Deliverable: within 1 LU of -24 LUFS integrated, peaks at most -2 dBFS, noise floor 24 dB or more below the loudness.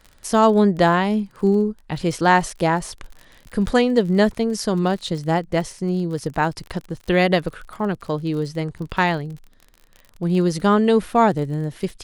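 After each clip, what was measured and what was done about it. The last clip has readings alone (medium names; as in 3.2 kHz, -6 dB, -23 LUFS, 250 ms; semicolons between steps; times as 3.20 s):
tick rate 34 per s; loudness -20.5 LUFS; peak level -3.0 dBFS; loudness target -24.0 LUFS
-> de-click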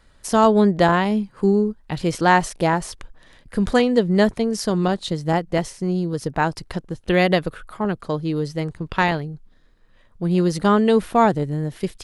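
tick rate 0 per s; loudness -20.5 LUFS; peak level -3.0 dBFS; loudness target -24.0 LUFS
-> trim -3.5 dB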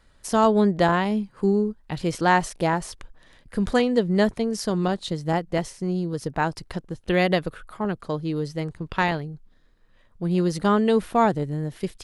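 loudness -24.0 LUFS; peak level -6.5 dBFS; noise floor -57 dBFS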